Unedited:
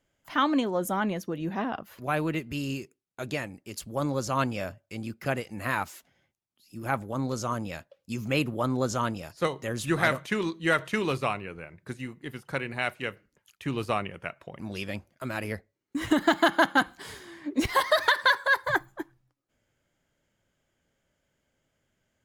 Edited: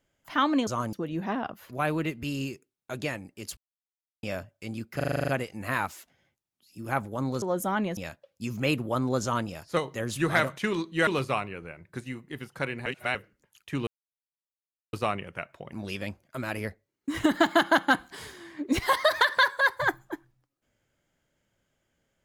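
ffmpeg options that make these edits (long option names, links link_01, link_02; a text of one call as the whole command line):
ffmpeg -i in.wav -filter_complex "[0:a]asplit=19[link_01][link_02][link_03][link_04][link_05][link_06][link_07][link_08][link_09][link_10][link_11][link_12][link_13][link_14][link_15][link_16][link_17][link_18][link_19];[link_01]atrim=end=0.672[link_20];[link_02]atrim=start=7.388:end=7.652[link_21];[link_03]atrim=start=1.218:end=3.86,asetpts=PTS-STARTPTS,afade=type=out:start_time=2.638:duration=0.004:curve=hsin[link_22];[link_04]atrim=start=3.86:end=4.52,asetpts=PTS-STARTPTS,volume=0[link_23];[link_05]atrim=start=4.52:end=5.292,asetpts=PTS-STARTPTS,afade=type=in:duration=0.004:curve=hsin[link_24];[link_06]atrim=start=5.248:end=5.292[link_25];[link_07]atrim=start=5.248:end=5.292[link_26];[link_08]atrim=start=5.248:end=5.292[link_27];[link_09]atrim=start=5.248:end=5.292[link_28];[link_10]atrim=start=5.248:end=5.292[link_29];[link_11]atrim=start=5.248:end=5.292[link_30];[link_12]atrim=start=5.248:end=5.292[link_31];[link_13]atrim=start=5.248:end=7.392[link_32];[link_14]atrim=start=0.668:end=1.222[link_33];[link_15]atrim=start=7.648:end=10.752[link_34];[link_16]atrim=start=10.998:end=12.792[link_35];[link_17]atrim=start=12.788:end=13.082,asetpts=PTS-STARTPTS,areverse[link_36];[link_18]atrim=start=13.078:end=13.8,asetpts=PTS-STARTPTS,afade=type=out:start_time=0.718:duration=0.004:curve=hsin,apad=pad_dur=1.06[link_37];[link_19]atrim=start=13.8,asetpts=PTS-STARTPTS,afade=type=in:duration=0.004:curve=hsin[link_38];[link_20][link_21]acrossfade=duration=0.004:curve1=hsin:curve2=hsin[link_39];[link_22][link_23][link_24]concat=n=3:v=0:a=1[link_40];[link_39][link_40]acrossfade=duration=0.004:curve1=hsin:curve2=hsin[link_41];[link_41][link_25]acrossfade=duration=0.004:curve1=hsin:curve2=hsin[link_42];[link_42][link_26]acrossfade=duration=0.004:curve1=hsin:curve2=hsin[link_43];[link_43][link_27]acrossfade=duration=0.004:curve1=hsin:curve2=hsin[link_44];[link_44][link_28]acrossfade=duration=0.004:curve1=hsin:curve2=hsin[link_45];[link_45][link_29]acrossfade=duration=0.004:curve1=hsin:curve2=hsin[link_46];[link_46][link_30]acrossfade=duration=0.004:curve1=hsin:curve2=hsin[link_47];[link_47][link_31]acrossfade=duration=0.004:curve1=hsin:curve2=hsin[link_48];[link_48][link_32]acrossfade=duration=0.004:curve1=hsin:curve2=hsin[link_49];[link_49][link_33]acrossfade=duration=0.004:curve1=hsin:curve2=hsin[link_50];[link_50][link_34]acrossfade=duration=0.004:curve1=hsin:curve2=hsin[link_51];[link_51][link_35]acrossfade=duration=0.004:curve1=hsin:curve2=hsin[link_52];[link_52][link_36]acrossfade=duration=0.004:curve1=hsin:curve2=hsin[link_53];[link_37][link_38]concat=n=2:v=0:a=1[link_54];[link_53][link_54]acrossfade=duration=0.004:curve1=hsin:curve2=hsin" out.wav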